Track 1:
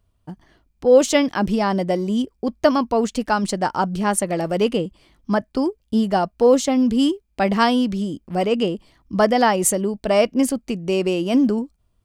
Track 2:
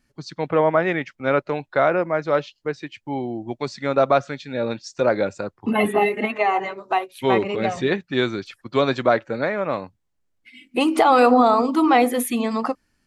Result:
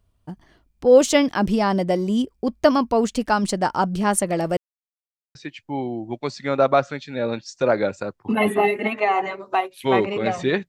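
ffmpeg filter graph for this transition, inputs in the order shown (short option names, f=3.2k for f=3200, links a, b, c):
-filter_complex "[0:a]apad=whole_dur=10.68,atrim=end=10.68,asplit=2[a][b];[a]atrim=end=4.57,asetpts=PTS-STARTPTS,afade=t=out:st=4.566:d=0.004:c=hsin[c];[b]atrim=start=4.57:end=5.35,asetpts=PTS-STARTPTS,volume=0[d];[1:a]atrim=start=2.73:end=8.06,asetpts=PTS-STARTPTS,afade=t=in:d=0.004:c=hsin[e];[c][d][e]concat=n=3:v=0:a=1"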